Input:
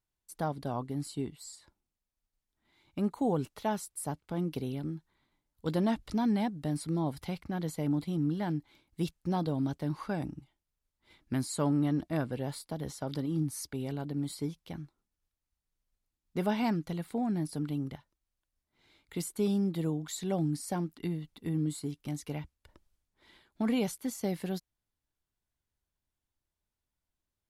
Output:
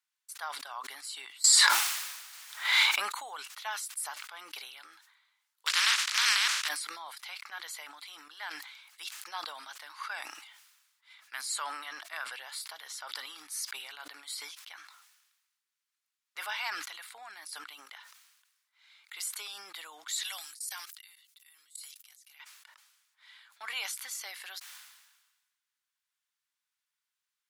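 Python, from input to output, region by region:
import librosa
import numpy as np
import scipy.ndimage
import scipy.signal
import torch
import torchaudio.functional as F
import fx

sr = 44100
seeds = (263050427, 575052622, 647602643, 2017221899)

y = fx.chain(x, sr, fx.low_shelf(hz=470.0, db=10.5),
    fx.hum_notches(base_hz=50, count=8),
    fx.env_flatten(amount_pct=100), at=(1.44, 3.0))
y = fx.spec_flatten(y, sr, power=0.23, at=(5.66, 6.67), fade=0.02)
y = fx.lowpass(y, sr, hz=6600.0, slope=12, at=(5.66, 6.67), fade=0.02)
y = fx.peak_eq(y, sr, hz=730.0, db=-11.5, octaves=0.23, at=(5.66, 6.67), fade=0.02)
y = fx.chain(y, sr, fx.differentiator(),
    fx.level_steps(step_db=21), at=(20.23, 22.4))
y = scipy.signal.sosfilt(scipy.signal.butter(4, 1200.0, 'highpass', fs=sr, output='sos'), y)
y = fx.high_shelf(y, sr, hz=9600.0, db=-6.0)
y = fx.sustainer(y, sr, db_per_s=46.0)
y = y * 10.0 ** (6.5 / 20.0)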